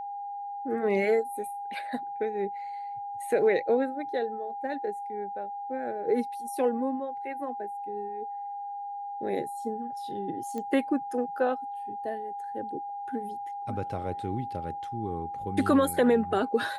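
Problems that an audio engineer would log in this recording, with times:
whine 810 Hz -34 dBFS
10.58 s: pop -23 dBFS

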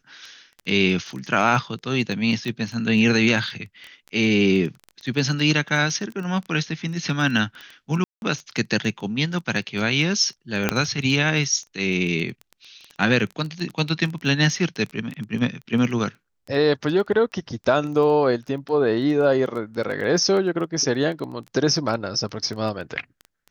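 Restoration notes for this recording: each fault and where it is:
crackle 11 per s -28 dBFS
2.48 s: pop -17 dBFS
8.04–8.22 s: dropout 181 ms
10.69 s: pop -4 dBFS

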